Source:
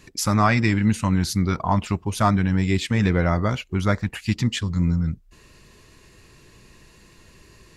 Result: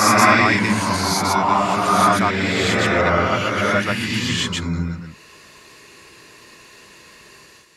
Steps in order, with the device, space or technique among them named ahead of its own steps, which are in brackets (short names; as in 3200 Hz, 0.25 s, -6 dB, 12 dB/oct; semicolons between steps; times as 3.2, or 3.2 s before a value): ghost voice (reverse; reverb RT60 2.3 s, pre-delay 0.111 s, DRR -8.5 dB; reverse; HPF 710 Hz 6 dB/oct); gain +2 dB